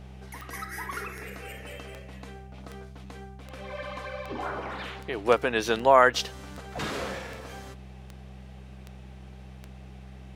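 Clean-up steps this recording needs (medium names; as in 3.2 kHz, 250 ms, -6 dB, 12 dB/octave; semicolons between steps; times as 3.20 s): de-click; de-hum 64.5 Hz, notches 3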